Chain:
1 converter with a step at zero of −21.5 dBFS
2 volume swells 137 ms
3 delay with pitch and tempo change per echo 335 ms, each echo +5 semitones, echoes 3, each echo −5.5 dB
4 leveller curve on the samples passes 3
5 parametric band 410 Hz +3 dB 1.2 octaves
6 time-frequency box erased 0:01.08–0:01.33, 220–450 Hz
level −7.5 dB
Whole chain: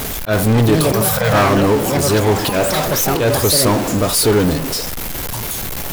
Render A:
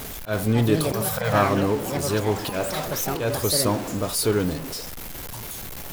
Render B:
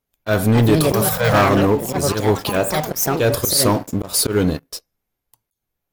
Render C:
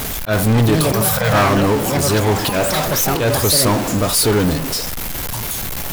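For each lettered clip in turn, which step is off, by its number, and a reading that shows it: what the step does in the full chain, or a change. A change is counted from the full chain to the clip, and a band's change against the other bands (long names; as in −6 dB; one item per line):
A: 4, change in crest factor +8.0 dB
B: 1, distortion level −11 dB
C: 5, 500 Hz band −2.0 dB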